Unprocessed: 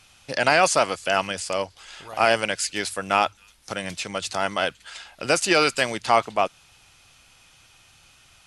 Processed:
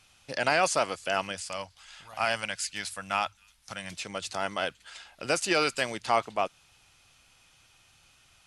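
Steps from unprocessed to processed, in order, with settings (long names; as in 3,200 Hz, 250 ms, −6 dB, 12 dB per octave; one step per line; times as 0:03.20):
0:01.35–0:03.92: parametric band 390 Hz −14 dB 0.96 octaves
level −6.5 dB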